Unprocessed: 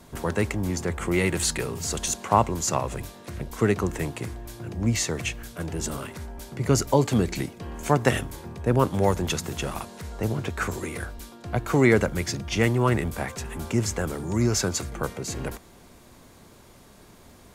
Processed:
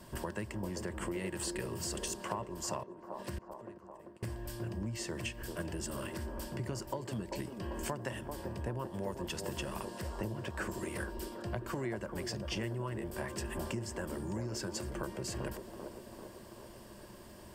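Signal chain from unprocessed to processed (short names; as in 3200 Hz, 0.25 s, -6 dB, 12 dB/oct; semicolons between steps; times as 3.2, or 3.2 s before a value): ripple EQ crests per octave 1.3, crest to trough 8 dB; 2.83–4.23 flipped gate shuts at -25 dBFS, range -32 dB; compressor 10:1, threshold -32 dBFS, peak gain reduction 20 dB; band-limited delay 0.392 s, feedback 61%, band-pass 500 Hz, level -4 dB; gain -3.5 dB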